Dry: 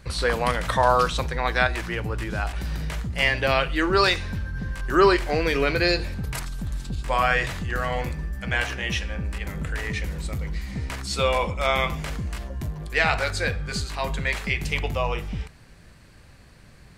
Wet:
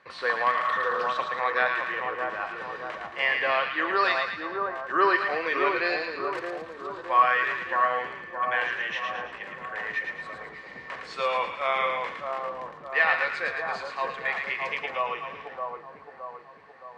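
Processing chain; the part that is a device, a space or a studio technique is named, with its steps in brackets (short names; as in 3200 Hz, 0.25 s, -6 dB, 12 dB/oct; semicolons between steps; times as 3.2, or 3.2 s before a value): tin-can telephone (BPF 510–2600 Hz; small resonant body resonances 1100/1800 Hz, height 13 dB, ringing for 75 ms); spectral repair 0.56–1.03, 530–1600 Hz both; split-band echo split 1300 Hz, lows 0.618 s, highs 0.111 s, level -4 dB; gain -3 dB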